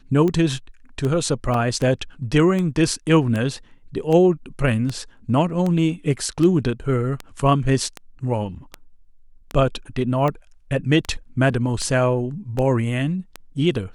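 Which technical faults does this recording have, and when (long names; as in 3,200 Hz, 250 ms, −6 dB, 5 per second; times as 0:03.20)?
scratch tick 78 rpm −13 dBFS
0:01.54: drop-out 2.5 ms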